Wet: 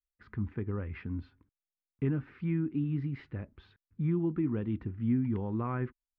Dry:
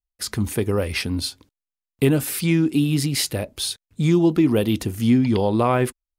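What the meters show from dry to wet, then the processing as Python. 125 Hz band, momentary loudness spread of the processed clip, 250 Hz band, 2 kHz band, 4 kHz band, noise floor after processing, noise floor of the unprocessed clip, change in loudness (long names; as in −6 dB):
−10.0 dB, 11 LU, −12.5 dB, −18.0 dB, below −35 dB, below −85 dBFS, below −85 dBFS, −13.0 dB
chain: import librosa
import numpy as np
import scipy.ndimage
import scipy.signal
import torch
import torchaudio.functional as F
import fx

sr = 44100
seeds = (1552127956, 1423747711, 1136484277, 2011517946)

y = scipy.signal.sosfilt(scipy.signal.butter(4, 1700.0, 'lowpass', fs=sr, output='sos'), x)
y = fx.peak_eq(y, sr, hz=620.0, db=-15.0, octaves=1.3)
y = F.gain(torch.from_numpy(y), -9.0).numpy()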